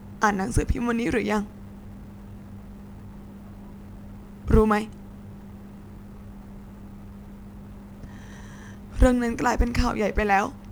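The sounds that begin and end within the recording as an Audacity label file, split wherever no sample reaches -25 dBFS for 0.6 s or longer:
4.490000	4.830000	sound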